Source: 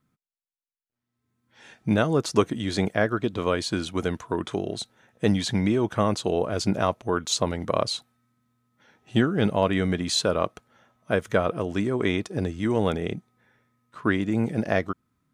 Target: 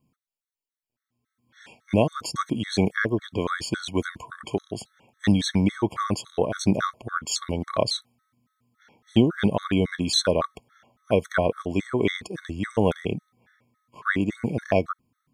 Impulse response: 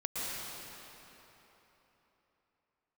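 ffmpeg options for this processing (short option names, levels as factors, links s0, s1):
-af "afftfilt=real='re*gt(sin(2*PI*3.6*pts/sr)*(1-2*mod(floor(b*sr/1024/1100),2)),0)':imag='im*gt(sin(2*PI*3.6*pts/sr)*(1-2*mod(floor(b*sr/1024/1100),2)),0)':win_size=1024:overlap=0.75,volume=1.5"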